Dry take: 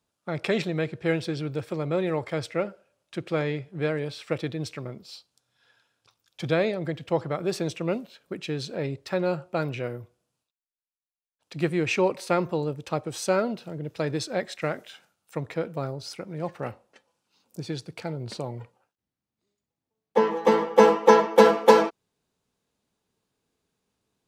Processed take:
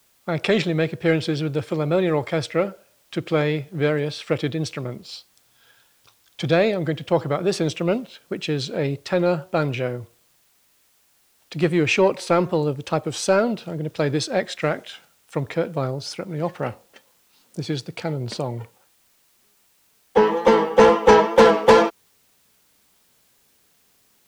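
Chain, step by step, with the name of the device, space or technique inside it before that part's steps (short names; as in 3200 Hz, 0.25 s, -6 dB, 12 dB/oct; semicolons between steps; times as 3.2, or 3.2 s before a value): bell 3200 Hz +3.5 dB 0.23 oct; compact cassette (soft clip -12 dBFS, distortion -12 dB; LPF 10000 Hz; wow and flutter; white noise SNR 39 dB); gain +6.5 dB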